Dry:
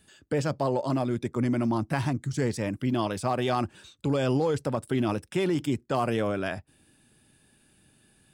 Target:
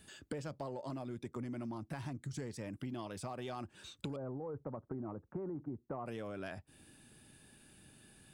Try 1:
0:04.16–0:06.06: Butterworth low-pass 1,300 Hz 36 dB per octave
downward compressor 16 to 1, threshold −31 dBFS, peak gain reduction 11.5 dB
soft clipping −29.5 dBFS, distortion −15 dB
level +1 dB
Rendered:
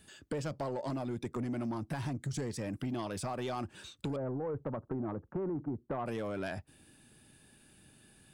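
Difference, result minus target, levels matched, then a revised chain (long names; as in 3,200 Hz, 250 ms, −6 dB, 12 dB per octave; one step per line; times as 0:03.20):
downward compressor: peak gain reduction −7.5 dB
0:04.16–0:06.06: Butterworth low-pass 1,300 Hz 36 dB per octave
downward compressor 16 to 1, threshold −39 dBFS, peak gain reduction 19 dB
soft clipping −29.5 dBFS, distortion −25 dB
level +1 dB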